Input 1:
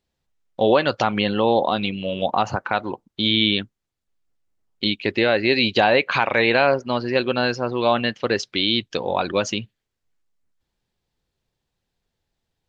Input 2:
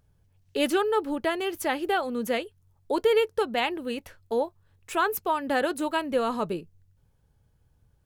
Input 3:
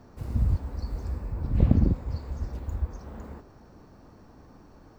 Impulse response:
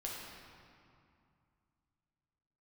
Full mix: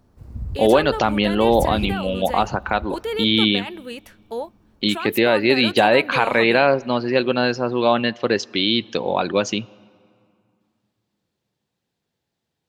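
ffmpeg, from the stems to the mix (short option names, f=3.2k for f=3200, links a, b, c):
-filter_complex "[0:a]highpass=140,volume=0dB,asplit=2[a][b];[b]volume=-23dB[c];[1:a]lowshelf=f=490:g=-11.5,alimiter=limit=-23dB:level=0:latency=1:release=20,volume=2dB[d];[2:a]volume=-10.5dB[e];[3:a]atrim=start_sample=2205[f];[c][f]afir=irnorm=-1:irlink=0[g];[a][d][e][g]amix=inputs=4:normalize=0,lowshelf=f=350:g=5"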